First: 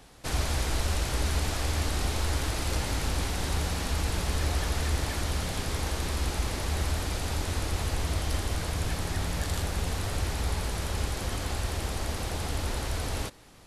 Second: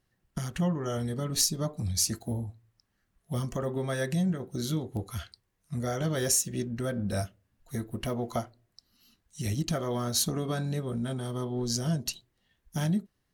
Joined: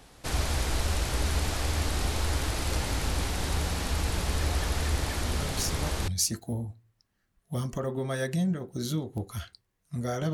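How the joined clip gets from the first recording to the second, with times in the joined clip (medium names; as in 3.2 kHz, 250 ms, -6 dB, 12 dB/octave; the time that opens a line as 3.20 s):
first
5.23 s: add second from 1.02 s 0.85 s -7 dB
6.08 s: go over to second from 1.87 s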